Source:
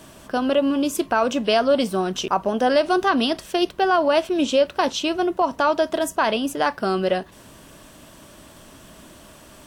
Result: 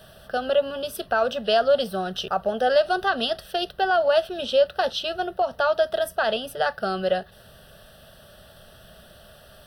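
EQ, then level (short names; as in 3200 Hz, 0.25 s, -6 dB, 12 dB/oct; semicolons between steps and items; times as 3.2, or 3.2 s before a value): fixed phaser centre 1500 Hz, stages 8; 0.0 dB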